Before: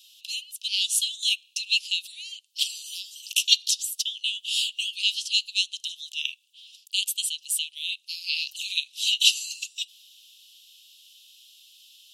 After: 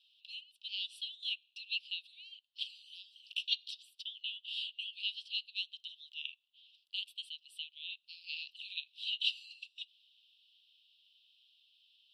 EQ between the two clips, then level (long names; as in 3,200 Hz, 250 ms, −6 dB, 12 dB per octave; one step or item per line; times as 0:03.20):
head-to-tape spacing loss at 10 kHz 27 dB
phaser with its sweep stopped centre 1,900 Hz, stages 6
−4.0 dB